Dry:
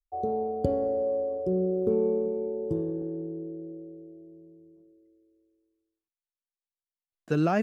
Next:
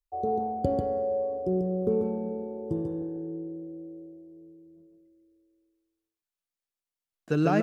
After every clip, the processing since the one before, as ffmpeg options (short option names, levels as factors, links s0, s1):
-af "aecho=1:1:142:0.668"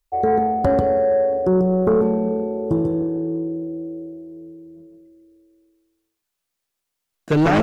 -af "aeval=exprs='0.266*sin(PI/2*2.51*val(0)/0.266)':c=same"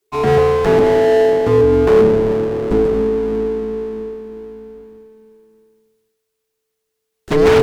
-af "aeval=exprs='abs(val(0))':c=same,afreqshift=-440,volume=1.88"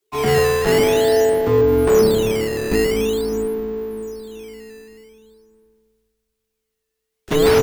-filter_complex "[0:a]acrossover=split=120|700[s0][s1][s2];[s0]aecho=1:1:742|1484|2226:0.299|0.0687|0.0158[s3];[s1]acrusher=samples=11:mix=1:aa=0.000001:lfo=1:lforange=17.6:lforate=0.47[s4];[s3][s4][s2]amix=inputs=3:normalize=0,volume=0.708"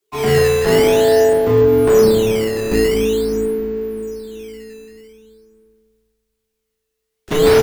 -filter_complex "[0:a]asplit=2[s0][s1];[s1]adelay=36,volume=0.631[s2];[s0][s2]amix=inputs=2:normalize=0"